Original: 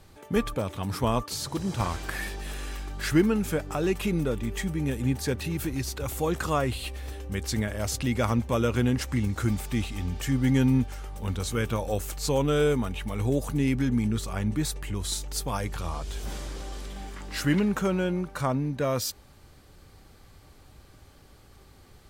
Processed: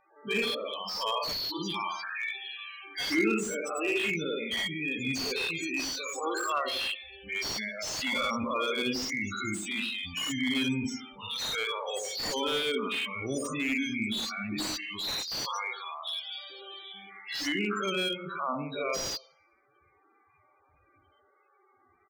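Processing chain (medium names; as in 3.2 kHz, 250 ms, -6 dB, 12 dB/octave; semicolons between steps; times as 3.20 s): every event in the spectrogram widened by 120 ms; level-controlled noise filter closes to 1.8 kHz, open at -17 dBFS; frequency weighting ITU-R 468; loudest bins only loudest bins 16; high-order bell 1.2 kHz -9 dB; hum notches 60/120/180/240/300/360/420/480/540 Hz; comb 0.9 ms, depth 46%; feedback echo behind a band-pass 87 ms, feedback 35%, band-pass 430 Hz, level -4 dB; slew-rate limiter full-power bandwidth 89 Hz; trim +1 dB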